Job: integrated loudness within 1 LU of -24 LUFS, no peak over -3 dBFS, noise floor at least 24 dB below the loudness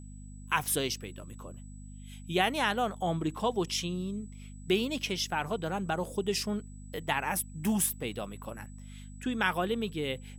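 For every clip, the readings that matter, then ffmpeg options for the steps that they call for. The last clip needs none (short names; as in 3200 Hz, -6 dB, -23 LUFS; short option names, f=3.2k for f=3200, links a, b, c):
hum 50 Hz; harmonics up to 250 Hz; hum level -44 dBFS; steady tone 7900 Hz; tone level -58 dBFS; loudness -31.5 LUFS; peak -11.5 dBFS; loudness target -24.0 LUFS
-> -af "bandreject=f=50:t=h:w=4,bandreject=f=100:t=h:w=4,bandreject=f=150:t=h:w=4,bandreject=f=200:t=h:w=4,bandreject=f=250:t=h:w=4"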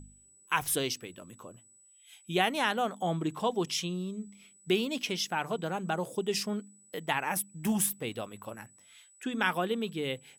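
hum none; steady tone 7900 Hz; tone level -58 dBFS
-> -af "bandreject=f=7.9k:w=30"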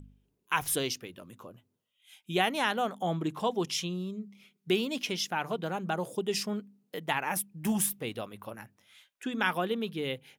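steady tone none; loudness -31.5 LUFS; peak -11.5 dBFS; loudness target -24.0 LUFS
-> -af "volume=7.5dB"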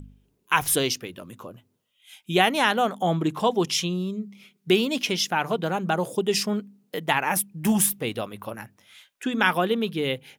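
loudness -24.0 LUFS; peak -4.0 dBFS; noise floor -71 dBFS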